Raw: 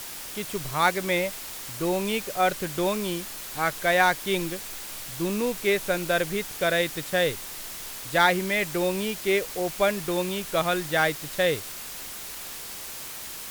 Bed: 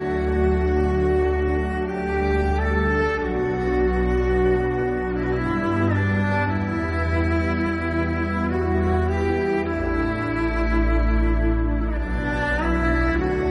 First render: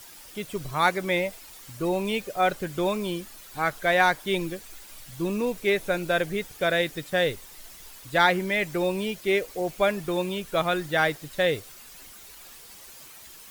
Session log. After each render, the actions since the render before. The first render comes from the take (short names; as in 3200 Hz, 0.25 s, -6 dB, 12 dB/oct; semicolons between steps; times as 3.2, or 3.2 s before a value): denoiser 11 dB, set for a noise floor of -38 dBFS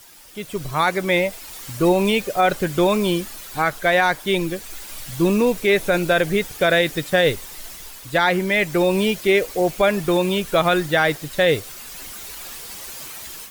AGC gain up to 11.5 dB; limiter -7.5 dBFS, peak gain reduction 6 dB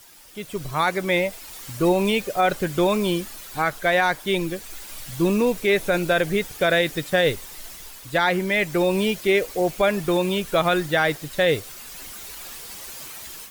gain -2.5 dB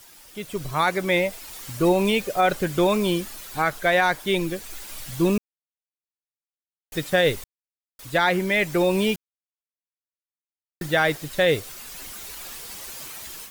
5.38–6.92 mute; 7.44–7.99 mute; 9.16–10.81 mute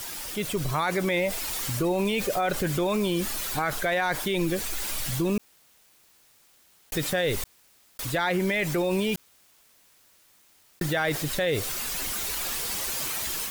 limiter -18 dBFS, peak gain reduction 8 dB; fast leveller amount 50%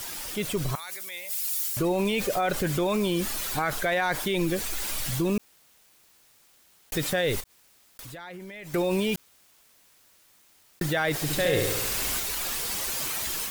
0.75–1.77 differentiator; 7.4–8.74 compressor 4:1, threshold -41 dBFS; 11.15–12.2 flutter echo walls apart 11.6 m, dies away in 1.1 s